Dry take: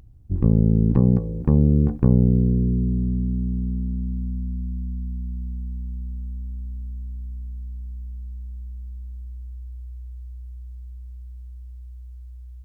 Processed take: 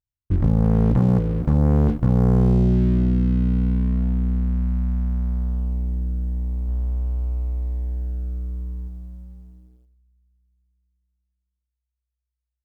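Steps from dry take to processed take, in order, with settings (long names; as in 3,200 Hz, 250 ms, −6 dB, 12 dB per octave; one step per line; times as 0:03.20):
noise gate −34 dBFS, range −34 dB
0:06.68–0:08.88: low-shelf EQ 140 Hz +2.5 dB
leveller curve on the samples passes 3
level −5 dB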